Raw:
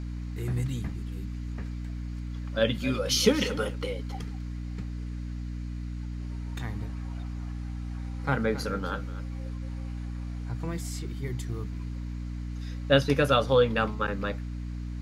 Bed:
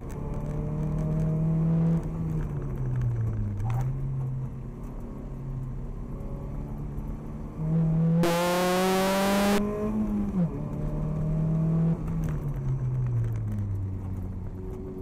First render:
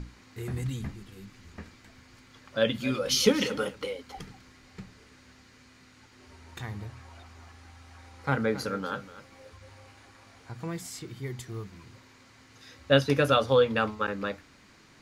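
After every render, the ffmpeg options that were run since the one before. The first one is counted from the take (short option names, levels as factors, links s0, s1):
-af "bandreject=f=60:t=h:w=6,bandreject=f=120:t=h:w=6,bandreject=f=180:t=h:w=6,bandreject=f=240:t=h:w=6,bandreject=f=300:t=h:w=6"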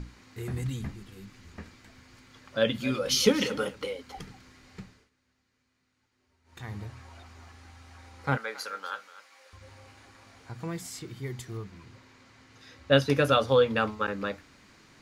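-filter_complex "[0:a]asettb=1/sr,asplit=3[s0][s1][s2];[s0]atrim=end=8.374[s3];[s1]atrim=start=8.37:end=9.53,asetpts=PTS-STARTPTS,afade=t=in:d=0.004:c=qsin,afade=t=out:st=1.156:d=0.004:c=qsin,highpass=890[s4];[s2]atrim=start=9.526[s5];[s3][s4]acrossfade=d=0.004:c1=hsin:c2=qsin[s6];[s6][s5]acrossfade=d=0.004:c1=qsin:c2=hsin,asettb=1/sr,asplit=3[s7][s8][s9];[s7]atrim=end=11.574[s10];[s8]atrim=start=11.57:end=12.93,asetpts=PTS-STARTPTS,afade=t=in:d=0.004:c=qsin,afade=t=out:st=1.356:d=0.004:c=qsin,highshelf=f=6900:g=-7.5[s11];[s9]atrim=start=12.926[s12];[s10][s11]acrossfade=d=0.004:c1=hsin:c2=qsin[s13];[s13][s12]acrossfade=d=0.004:c1=qsin:c2=hsin,asplit=3[s14][s15][s16];[s14]atrim=end=5.1,asetpts=PTS-STARTPTS,afade=t=out:st=4.8:d=0.3:silence=0.105925[s17];[s15]atrim=start=5.1:end=6.44,asetpts=PTS-STARTPTS,volume=0.106[s18];[s16]atrim=start=6.44,asetpts=PTS-STARTPTS,afade=t=in:d=0.3:silence=0.105925[s19];[s17][s18][s19]concat=n=3:v=0:a=1"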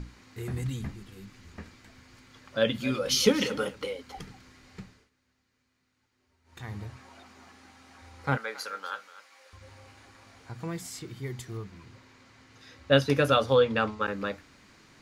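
-filter_complex "[0:a]asettb=1/sr,asplit=3[s0][s1][s2];[s0]atrim=end=6.964[s3];[s1]atrim=start=6.96:end=8.02,asetpts=PTS-STARTPTS,afade=t=in:d=0.004:c=qsin,afade=t=out:st=1.056:d=0.004:c=qsin,lowshelf=f=130:t=q:w=1.5:g=-10.5[s4];[s2]atrim=start=8.016[s5];[s3][s4]acrossfade=d=0.004:c1=hsin:c2=qsin[s6];[s6][s5]acrossfade=d=0.004:c1=qsin:c2=hsin,asettb=1/sr,asplit=3[s7][s8][s9];[s7]atrim=end=13.554[s10];[s8]atrim=start=13.55:end=14.02,asetpts=PTS-STARTPTS,afade=t=in:d=0.004:c=qsin,afade=t=out:st=0.466:d=0.004:c=qsin,lowpass=8400[s11];[s9]atrim=start=14.016[s12];[s10][s11]acrossfade=d=0.004:c1=hsin:c2=qsin[s13];[s13][s12]acrossfade=d=0.004:c1=qsin:c2=hsin"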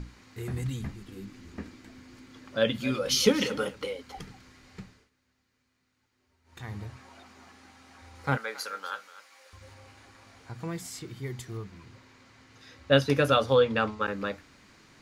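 -filter_complex "[0:a]asettb=1/sr,asplit=3[s0][s1][s2];[s0]atrim=end=1.084[s3];[s1]atrim=start=1.08:end=2.57,asetpts=PTS-STARTPTS,afade=t=in:d=0.004:c=qsin,afade=t=out:st=1.486:d=0.004:c=qsin,equalizer=f=290:w=1.5:g=10.5[s4];[s2]atrim=start=2.566[s5];[s3][s4]acrossfade=d=0.004:c1=hsin:c2=qsin[s6];[s6][s5]acrossfade=d=0.004:c1=qsin:c2=hsin,asettb=1/sr,asplit=3[s7][s8][s9];[s7]atrim=end=8.154[s10];[s8]atrim=start=8.15:end=9.74,asetpts=PTS-STARTPTS,afade=t=in:d=0.004:c=qsin,afade=t=out:st=1.586:d=0.004:c=qsin,highshelf=f=7200:g=5[s11];[s9]atrim=start=9.736[s12];[s10][s11]acrossfade=d=0.004:c1=hsin:c2=qsin[s13];[s13][s12]acrossfade=d=0.004:c1=qsin:c2=hsin"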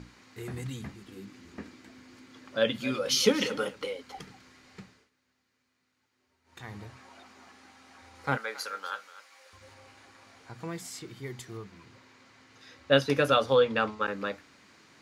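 -af "highpass=f=210:p=1,highshelf=f=12000:g=-4.5"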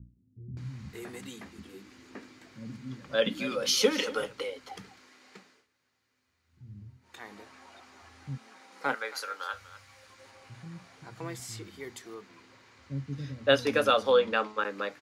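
-filter_complex "[0:a]acrossover=split=220[s0][s1];[s1]adelay=570[s2];[s0][s2]amix=inputs=2:normalize=0"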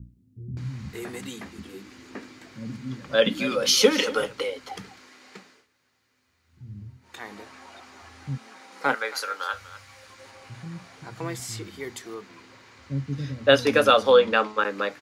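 -af "volume=2.11,alimiter=limit=0.794:level=0:latency=1"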